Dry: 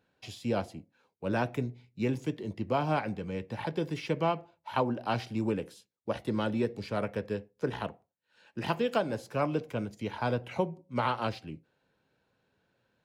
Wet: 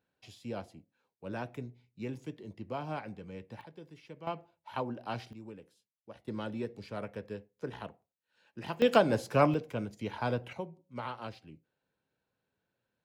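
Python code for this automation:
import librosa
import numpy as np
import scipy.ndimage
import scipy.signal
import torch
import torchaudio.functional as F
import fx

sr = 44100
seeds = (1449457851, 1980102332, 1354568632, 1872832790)

y = fx.gain(x, sr, db=fx.steps((0.0, -9.0), (3.61, -18.0), (4.27, -7.0), (5.33, -17.0), (6.28, -7.5), (8.82, 5.0), (9.54, -2.0), (10.53, -10.0)))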